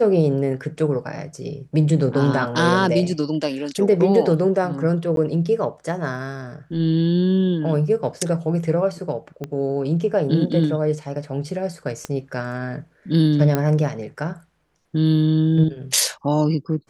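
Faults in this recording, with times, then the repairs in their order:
5.16–5.17 gap 12 ms
9.44 pop -16 dBFS
12.05 pop -13 dBFS
13.55 pop -7 dBFS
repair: de-click; interpolate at 5.16, 12 ms

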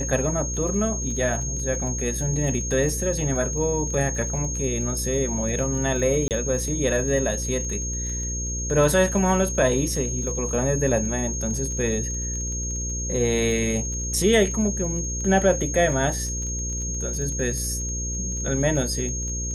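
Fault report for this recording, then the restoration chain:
buzz 60 Hz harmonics 9 -30 dBFS
crackle 25/s -31 dBFS
tone 6500 Hz -29 dBFS
6.28–6.31 gap 28 ms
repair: de-click; de-hum 60 Hz, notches 9; notch 6500 Hz, Q 30; interpolate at 6.28, 28 ms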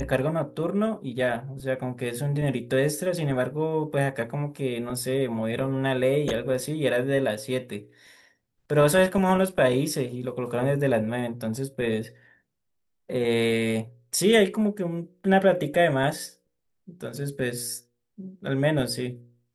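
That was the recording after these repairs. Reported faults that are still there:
none

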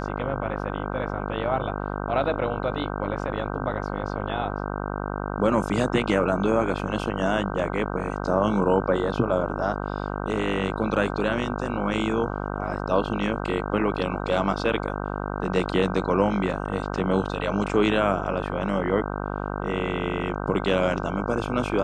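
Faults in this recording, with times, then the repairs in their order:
buzz 50 Hz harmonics 31 -30 dBFS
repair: de-hum 50 Hz, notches 31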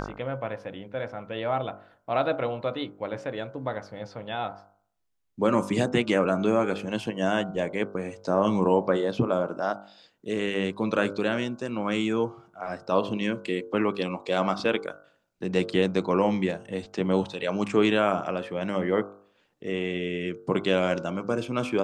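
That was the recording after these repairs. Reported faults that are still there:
none

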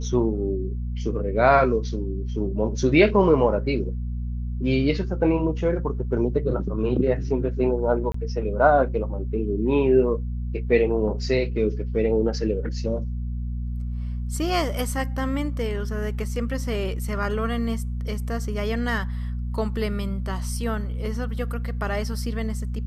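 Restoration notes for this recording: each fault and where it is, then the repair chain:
hum 60 Hz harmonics 4 -28 dBFS
8.12–8.14 gap 24 ms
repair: de-hum 60 Hz, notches 4; interpolate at 8.12, 24 ms

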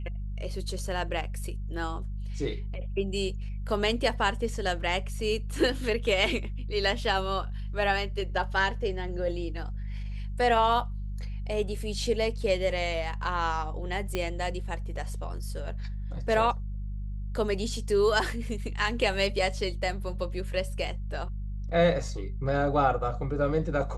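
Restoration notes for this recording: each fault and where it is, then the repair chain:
hum 50 Hz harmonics 4 -34 dBFS
14.15 pop -15 dBFS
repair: de-click; de-hum 50 Hz, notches 4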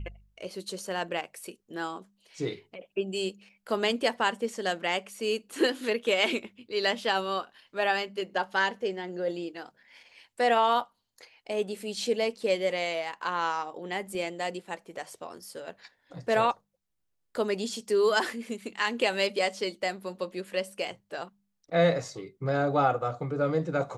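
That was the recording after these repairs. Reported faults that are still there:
14.15 pop

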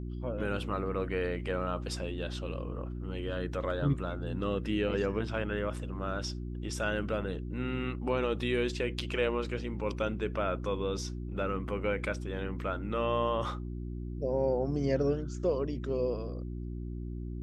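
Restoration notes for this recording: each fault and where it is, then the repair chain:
hum 60 Hz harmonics 6 -38 dBFS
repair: de-hum 60 Hz, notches 6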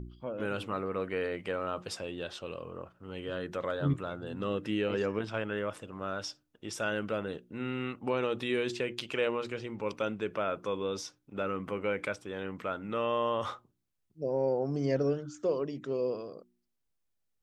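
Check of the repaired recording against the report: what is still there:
none

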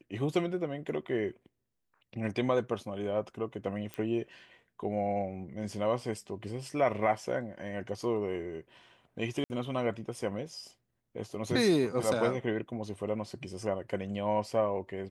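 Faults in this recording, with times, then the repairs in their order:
3.94 pop -23 dBFS
9.44–9.5 gap 59 ms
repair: de-click; interpolate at 9.44, 59 ms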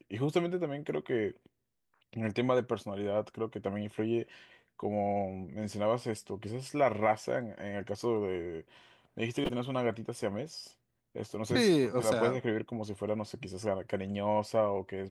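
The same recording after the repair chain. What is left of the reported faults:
none

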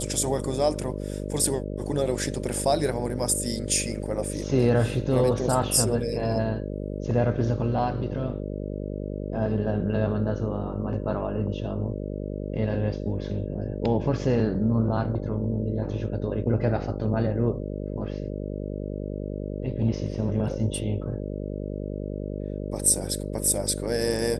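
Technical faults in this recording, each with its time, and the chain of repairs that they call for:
buzz 50 Hz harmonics 12 -32 dBFS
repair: de-hum 50 Hz, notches 12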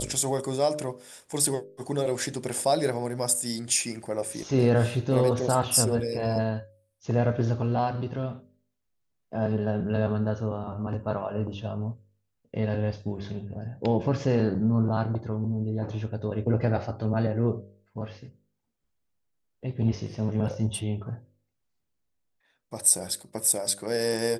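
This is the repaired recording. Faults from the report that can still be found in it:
none

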